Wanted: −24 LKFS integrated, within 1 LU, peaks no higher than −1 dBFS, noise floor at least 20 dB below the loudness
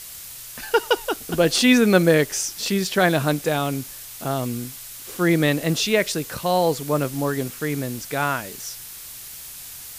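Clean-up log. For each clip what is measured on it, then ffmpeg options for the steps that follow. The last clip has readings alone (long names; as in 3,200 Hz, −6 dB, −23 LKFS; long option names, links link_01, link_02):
background noise floor −38 dBFS; target noise floor −42 dBFS; integrated loudness −21.5 LKFS; sample peak −1.5 dBFS; target loudness −24.0 LKFS
→ -af "afftdn=noise_reduction=6:noise_floor=-38"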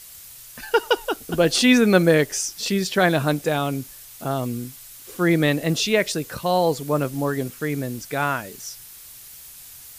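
background noise floor −43 dBFS; integrated loudness −21.5 LKFS; sample peak −2.0 dBFS; target loudness −24.0 LKFS
→ -af "volume=-2.5dB"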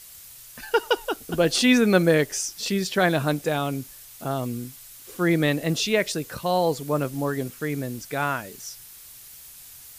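integrated loudness −24.0 LKFS; sample peak −4.5 dBFS; background noise floor −46 dBFS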